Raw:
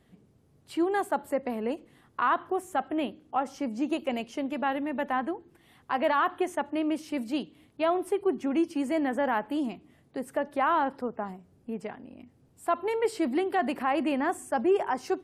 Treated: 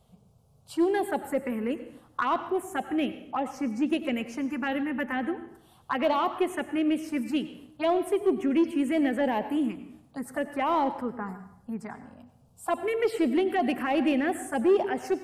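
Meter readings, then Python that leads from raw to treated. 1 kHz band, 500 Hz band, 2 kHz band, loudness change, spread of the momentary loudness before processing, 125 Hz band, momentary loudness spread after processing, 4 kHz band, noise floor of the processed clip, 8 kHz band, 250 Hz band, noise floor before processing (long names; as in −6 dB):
−1.5 dB, +1.5 dB, 0.0 dB, +1.5 dB, 12 LU, can't be measured, 13 LU, +2.5 dB, −60 dBFS, +1.5 dB, +3.0 dB, −63 dBFS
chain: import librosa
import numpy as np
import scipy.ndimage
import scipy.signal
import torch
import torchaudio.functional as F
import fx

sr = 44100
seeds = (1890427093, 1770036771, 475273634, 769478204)

p1 = fx.env_phaser(x, sr, low_hz=310.0, high_hz=1700.0, full_db=-21.0)
p2 = np.clip(p1, -10.0 ** (-25.5 / 20.0), 10.0 ** (-25.5 / 20.0))
p3 = p1 + (p2 * librosa.db_to_amplitude(-3.5))
y = fx.rev_plate(p3, sr, seeds[0], rt60_s=0.71, hf_ratio=0.85, predelay_ms=80, drr_db=11.5)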